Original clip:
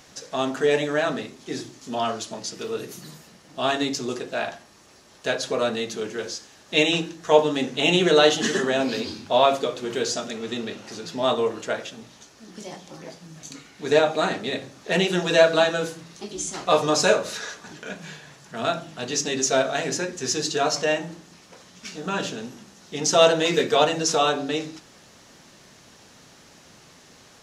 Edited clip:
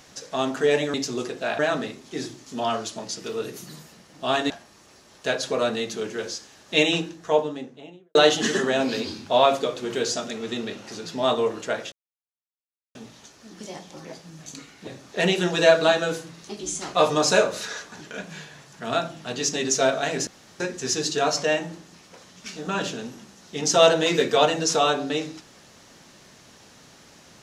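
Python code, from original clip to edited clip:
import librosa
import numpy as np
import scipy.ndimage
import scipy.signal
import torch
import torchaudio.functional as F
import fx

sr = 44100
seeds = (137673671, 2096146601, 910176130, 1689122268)

y = fx.studio_fade_out(x, sr, start_s=6.79, length_s=1.36)
y = fx.edit(y, sr, fx.move(start_s=3.85, length_s=0.65, to_s=0.94),
    fx.insert_silence(at_s=11.92, length_s=1.03),
    fx.cut(start_s=13.84, length_s=0.75),
    fx.insert_room_tone(at_s=19.99, length_s=0.33), tone=tone)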